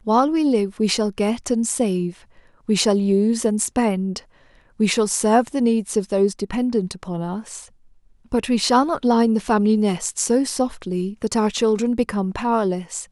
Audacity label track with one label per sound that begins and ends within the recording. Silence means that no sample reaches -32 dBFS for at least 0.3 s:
2.690000	4.190000	sound
4.800000	7.640000	sound